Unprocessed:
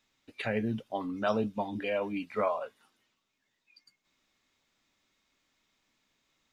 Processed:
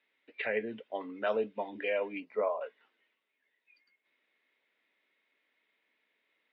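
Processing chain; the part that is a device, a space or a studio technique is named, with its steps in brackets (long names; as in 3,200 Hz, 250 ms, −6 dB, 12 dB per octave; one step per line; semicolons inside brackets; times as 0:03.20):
phone earpiece (loudspeaker in its box 410–3,100 Hz, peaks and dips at 450 Hz +5 dB, 800 Hz −5 dB, 1,200 Hz −7 dB, 2,000 Hz +6 dB)
0:02.20–0:02.61: flat-topped bell 2,400 Hz −12.5 dB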